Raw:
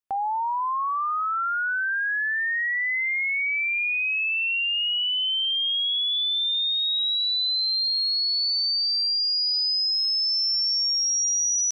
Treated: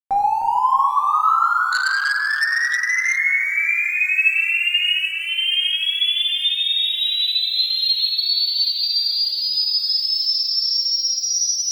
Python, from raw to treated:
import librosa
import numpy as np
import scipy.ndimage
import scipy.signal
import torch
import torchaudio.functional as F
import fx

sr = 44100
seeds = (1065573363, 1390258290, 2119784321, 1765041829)

y = fx.low_shelf(x, sr, hz=79.0, db=7.5)
y = fx.notch(y, sr, hz=3000.0, q=8.7)
y = fx.rider(y, sr, range_db=4, speed_s=0.5)
y = np.sign(y) * np.maximum(np.abs(y) - 10.0 ** (-47.5 / 20.0), 0.0)
y = fx.vibrato(y, sr, rate_hz=1.6, depth_cents=5.8)
y = fx.echo_split(y, sr, split_hz=2000.0, low_ms=308, high_ms=774, feedback_pct=52, wet_db=-7.0)
y = fx.room_shoebox(y, sr, seeds[0], volume_m3=470.0, walls='mixed', distance_m=2.1)
y = fx.transformer_sat(y, sr, knee_hz=3900.0, at=(1.72, 3.18))